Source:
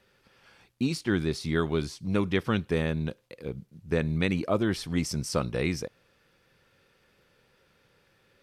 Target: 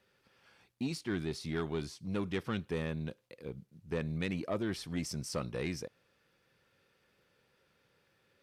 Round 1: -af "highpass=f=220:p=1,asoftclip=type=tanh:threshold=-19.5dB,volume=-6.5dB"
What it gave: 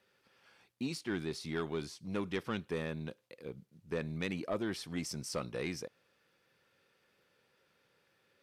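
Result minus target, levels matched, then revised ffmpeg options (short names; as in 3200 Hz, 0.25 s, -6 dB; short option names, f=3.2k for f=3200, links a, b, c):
125 Hz band -2.5 dB
-af "highpass=f=68:p=1,asoftclip=type=tanh:threshold=-19.5dB,volume=-6.5dB"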